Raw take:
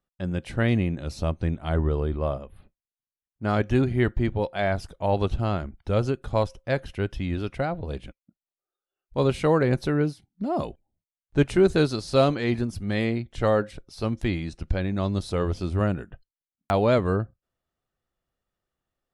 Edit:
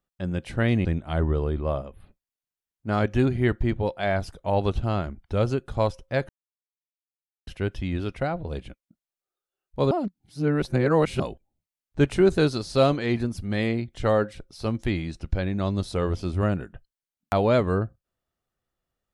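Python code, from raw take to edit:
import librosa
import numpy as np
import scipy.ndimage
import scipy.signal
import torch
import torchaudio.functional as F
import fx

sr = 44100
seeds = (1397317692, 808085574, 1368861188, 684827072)

y = fx.edit(x, sr, fx.cut(start_s=0.85, length_s=0.56),
    fx.insert_silence(at_s=6.85, length_s=1.18),
    fx.reverse_span(start_s=9.29, length_s=1.29), tone=tone)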